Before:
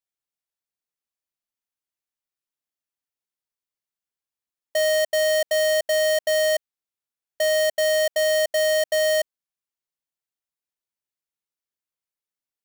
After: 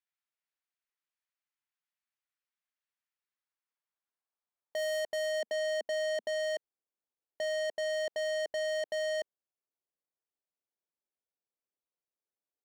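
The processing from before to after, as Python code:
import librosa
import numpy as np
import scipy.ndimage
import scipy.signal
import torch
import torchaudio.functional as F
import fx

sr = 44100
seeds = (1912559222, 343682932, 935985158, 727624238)

y = fx.filter_sweep_bandpass(x, sr, from_hz=1800.0, to_hz=460.0, start_s=3.18, end_s=5.45, q=0.99)
y = np.clip(10.0 ** (34.0 / 20.0) * y, -1.0, 1.0) / 10.0 ** (34.0 / 20.0)
y = fx.low_shelf_res(y, sr, hz=180.0, db=-7.5, q=3.0, at=(5.34, 6.29))
y = y * librosa.db_to_amplitude(2.0)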